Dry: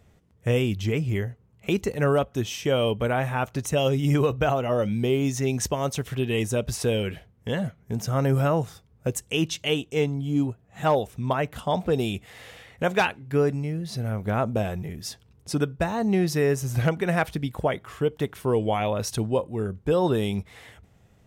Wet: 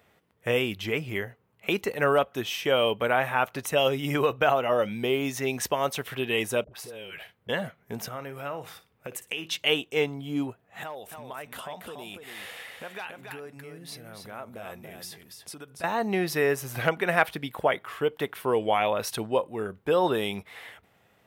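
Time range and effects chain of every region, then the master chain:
6.64–7.49 s: band-stop 260 Hz, Q 5.1 + phase dispersion highs, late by 76 ms, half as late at 740 Hz + compression 16:1, threshold -35 dBFS
8.08–9.46 s: peaking EQ 2.4 kHz +4.5 dB 0.63 oct + compression 8:1, threshold -30 dBFS + flutter echo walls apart 9.8 m, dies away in 0.24 s
10.83–15.84 s: peaking EQ 9.4 kHz +7 dB 1.6 oct + compression 12:1, threshold -35 dBFS + delay 284 ms -6 dB
whole clip: high-pass 1 kHz 6 dB/octave; peaking EQ 6.7 kHz -11.5 dB 1.2 oct; trim +6.5 dB

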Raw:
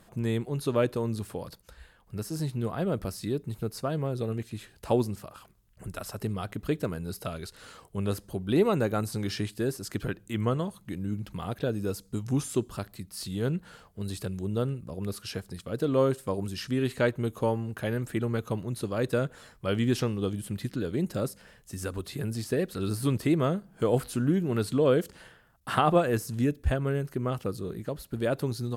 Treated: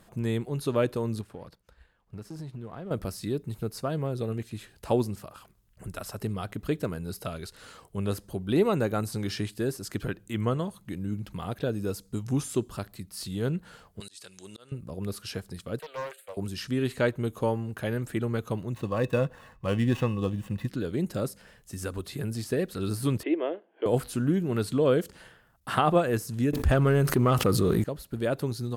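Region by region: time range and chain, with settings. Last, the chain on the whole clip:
1.21–2.91 s: companding laws mixed up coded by A + low-pass 2.8 kHz 6 dB/octave + compression 4:1, threshold -36 dBFS
14.00–14.72 s: frequency weighting ITU-R 468 + slow attack 503 ms
15.79–16.37 s: steep high-pass 560 Hz + static phaser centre 2.4 kHz, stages 4 + loudspeaker Doppler distortion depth 0.4 ms
18.74–20.68 s: median filter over 9 samples + comb 1.1 ms, depth 44% + small resonant body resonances 510/1100/2600 Hz, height 12 dB, ringing for 90 ms
23.23–23.86 s: Chebyshev band-pass 310–3100 Hz, order 4 + peaking EQ 1.3 kHz -11.5 dB 0.45 oct
26.53–27.84 s: peaking EQ 1.2 kHz +4.5 dB 0.29 oct + waveshaping leveller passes 1 + level flattener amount 70%
whole clip: none

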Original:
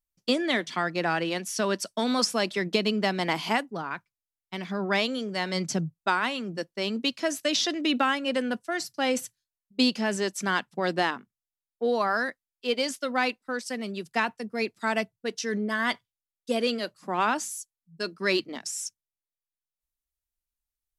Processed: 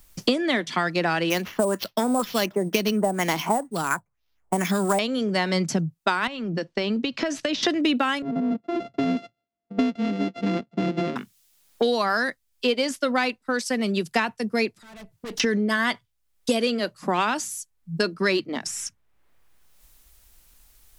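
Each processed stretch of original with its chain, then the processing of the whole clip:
1.30–4.99 s: LFO low-pass sine 2.1 Hz 660–5400 Hz + sample-rate reducer 8.7 kHz
6.27–7.63 s: compression, threshold -34 dBFS + distance through air 130 m
8.22–11.16 s: sorted samples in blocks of 64 samples + band-pass filter 260 Hz, Q 1.8 + distance through air 140 m
14.77–15.40 s: valve stage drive 41 dB, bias 0.6 + compression 5:1, threshold -60 dBFS
whole clip: bass shelf 110 Hz +8 dB; three bands compressed up and down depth 100%; trim +2.5 dB

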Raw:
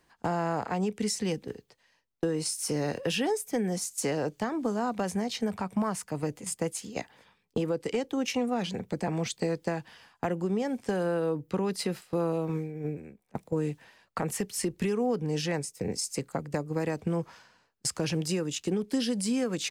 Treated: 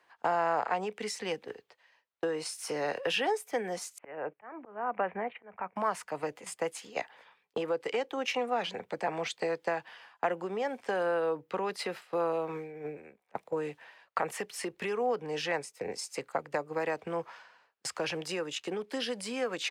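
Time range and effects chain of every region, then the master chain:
3.98–5.76 s: steep low-pass 2.6 kHz 48 dB/octave + gate -43 dBFS, range -14 dB + slow attack 331 ms
whole clip: high-pass 73 Hz; three-band isolator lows -20 dB, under 470 Hz, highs -13 dB, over 3.5 kHz; trim +4 dB

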